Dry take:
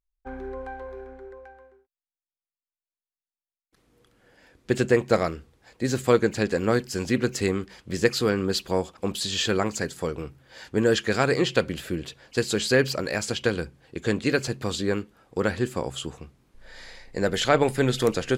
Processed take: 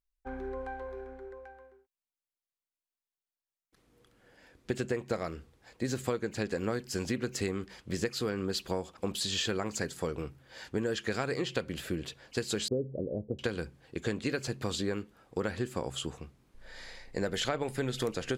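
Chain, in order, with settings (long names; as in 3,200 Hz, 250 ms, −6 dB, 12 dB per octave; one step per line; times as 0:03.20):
0:12.68–0:13.39: Butterworth low-pass 560 Hz 36 dB per octave
downward compressor 10 to 1, threshold −25 dBFS, peak gain reduction 12.5 dB
level −3 dB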